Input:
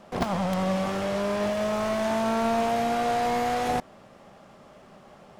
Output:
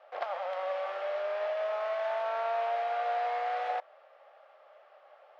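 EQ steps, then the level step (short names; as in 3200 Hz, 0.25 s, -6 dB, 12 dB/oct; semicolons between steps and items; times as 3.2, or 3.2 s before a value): elliptic high-pass 550 Hz, stop band 80 dB; air absorption 330 m; notch 1000 Hz, Q 8.1; -2.5 dB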